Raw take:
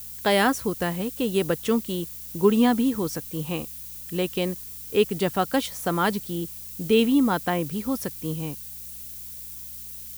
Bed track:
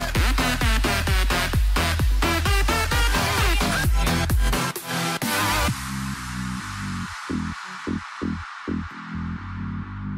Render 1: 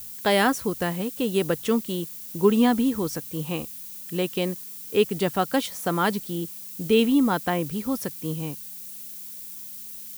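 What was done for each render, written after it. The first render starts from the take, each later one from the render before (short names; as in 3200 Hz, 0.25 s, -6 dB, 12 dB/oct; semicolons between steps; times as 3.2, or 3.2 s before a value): de-hum 60 Hz, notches 2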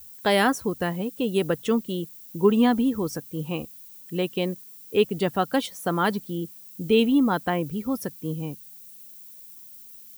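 denoiser 10 dB, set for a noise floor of -39 dBFS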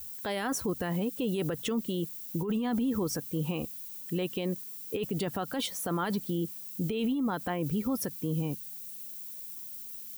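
negative-ratio compressor -25 dBFS, ratio -1; limiter -22.5 dBFS, peak gain reduction 11.5 dB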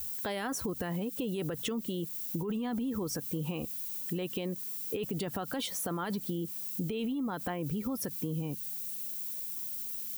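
in parallel at -2.5 dB: limiter -33 dBFS, peak gain reduction 10.5 dB; on the sum: compressor, threshold -31 dBFS, peak gain reduction 7 dB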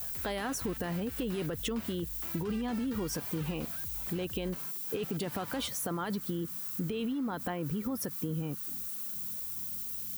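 add bed track -27 dB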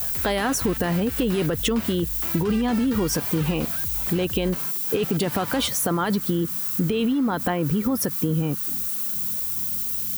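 gain +11.5 dB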